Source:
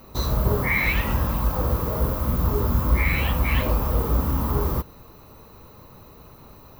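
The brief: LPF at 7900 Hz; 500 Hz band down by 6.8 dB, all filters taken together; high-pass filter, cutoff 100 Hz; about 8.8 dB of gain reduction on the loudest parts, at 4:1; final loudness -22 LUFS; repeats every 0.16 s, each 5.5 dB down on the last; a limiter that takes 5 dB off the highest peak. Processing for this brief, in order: HPF 100 Hz; LPF 7900 Hz; bell 500 Hz -8.5 dB; compressor 4:1, threshold -31 dBFS; limiter -27 dBFS; feedback echo 0.16 s, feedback 53%, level -5.5 dB; gain +13 dB

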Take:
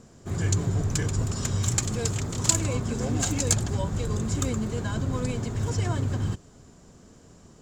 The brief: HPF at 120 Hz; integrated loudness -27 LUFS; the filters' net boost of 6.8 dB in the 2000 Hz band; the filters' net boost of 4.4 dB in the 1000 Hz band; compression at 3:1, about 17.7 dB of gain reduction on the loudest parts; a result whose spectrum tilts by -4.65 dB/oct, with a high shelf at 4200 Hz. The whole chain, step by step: HPF 120 Hz; bell 1000 Hz +3.5 dB; bell 2000 Hz +8.5 dB; high shelf 4200 Hz -4.5 dB; compressor 3:1, threshold -43 dBFS; gain +15 dB

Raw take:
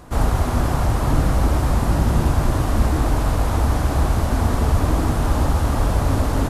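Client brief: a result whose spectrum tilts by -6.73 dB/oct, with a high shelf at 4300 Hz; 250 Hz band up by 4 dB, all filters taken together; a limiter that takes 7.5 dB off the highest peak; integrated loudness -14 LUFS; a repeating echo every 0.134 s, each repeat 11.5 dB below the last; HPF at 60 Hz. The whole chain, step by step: HPF 60 Hz; bell 250 Hz +5 dB; high shelf 4300 Hz -8 dB; limiter -13.5 dBFS; feedback echo 0.134 s, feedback 27%, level -11.5 dB; gain +8.5 dB

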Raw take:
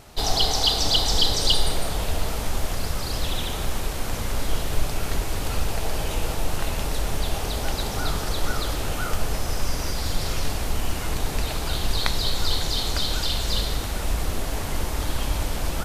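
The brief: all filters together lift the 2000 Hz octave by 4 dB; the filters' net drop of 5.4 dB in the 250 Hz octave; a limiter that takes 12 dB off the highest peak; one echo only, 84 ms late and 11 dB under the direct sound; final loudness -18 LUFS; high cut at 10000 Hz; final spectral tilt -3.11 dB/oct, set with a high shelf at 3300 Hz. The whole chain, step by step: LPF 10000 Hz; bell 250 Hz -8 dB; bell 2000 Hz +3.5 dB; high shelf 3300 Hz +5.5 dB; limiter -12.5 dBFS; echo 84 ms -11 dB; gain +7 dB

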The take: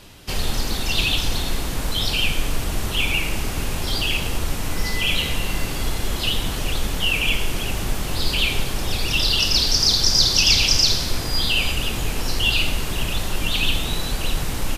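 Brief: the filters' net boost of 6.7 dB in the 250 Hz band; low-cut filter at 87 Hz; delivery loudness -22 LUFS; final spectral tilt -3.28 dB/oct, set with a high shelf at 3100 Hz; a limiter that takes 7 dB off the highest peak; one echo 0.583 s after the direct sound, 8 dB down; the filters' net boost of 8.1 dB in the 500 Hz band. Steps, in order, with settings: HPF 87 Hz; bell 250 Hz +6.5 dB; bell 500 Hz +8 dB; high shelf 3100 Hz +3.5 dB; limiter -8 dBFS; echo 0.583 s -8 dB; gain -3 dB

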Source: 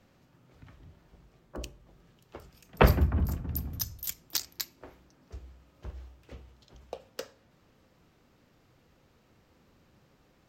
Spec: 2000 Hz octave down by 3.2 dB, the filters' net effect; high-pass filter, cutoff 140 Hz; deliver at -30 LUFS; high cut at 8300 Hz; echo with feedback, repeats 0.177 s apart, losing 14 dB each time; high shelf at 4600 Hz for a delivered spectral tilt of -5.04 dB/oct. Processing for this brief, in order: HPF 140 Hz; LPF 8300 Hz; bell 2000 Hz -3.5 dB; high shelf 4600 Hz -4.5 dB; feedback echo 0.177 s, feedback 20%, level -14 dB; gain +5 dB

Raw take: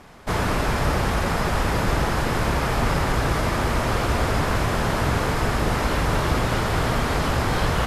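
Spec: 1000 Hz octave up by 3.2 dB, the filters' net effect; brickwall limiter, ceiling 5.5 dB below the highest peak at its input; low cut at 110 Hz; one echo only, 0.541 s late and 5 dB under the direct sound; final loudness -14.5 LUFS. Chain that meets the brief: HPF 110 Hz; bell 1000 Hz +4 dB; limiter -15 dBFS; echo 0.541 s -5 dB; gain +8.5 dB

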